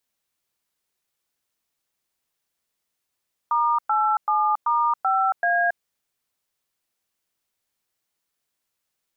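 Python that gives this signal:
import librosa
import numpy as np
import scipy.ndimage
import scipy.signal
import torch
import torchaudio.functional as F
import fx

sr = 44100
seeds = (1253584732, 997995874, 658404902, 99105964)

y = fx.dtmf(sr, digits='*87*5A', tone_ms=276, gap_ms=108, level_db=-20.5)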